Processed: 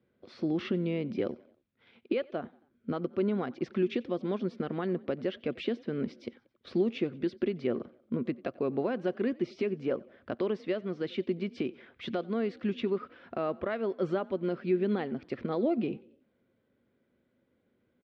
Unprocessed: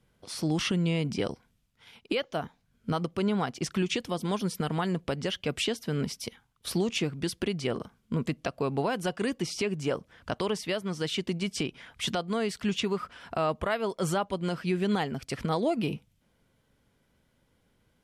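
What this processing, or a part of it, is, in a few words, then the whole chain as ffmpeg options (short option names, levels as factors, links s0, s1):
frequency-shifting delay pedal into a guitar cabinet: -filter_complex "[0:a]asplit=4[s0][s1][s2][s3];[s1]adelay=91,afreqshift=40,volume=0.0631[s4];[s2]adelay=182,afreqshift=80,volume=0.0316[s5];[s3]adelay=273,afreqshift=120,volume=0.0158[s6];[s0][s4][s5][s6]amix=inputs=4:normalize=0,highpass=95,equalizer=f=150:t=q:w=4:g=-4,equalizer=f=240:t=q:w=4:g=8,equalizer=f=360:t=q:w=4:g=9,equalizer=f=540:t=q:w=4:g=6,equalizer=f=910:t=q:w=4:g=-6,equalizer=f=3000:t=q:w=4:g=-6,lowpass=f=3500:w=0.5412,lowpass=f=3500:w=1.3066,volume=0.501"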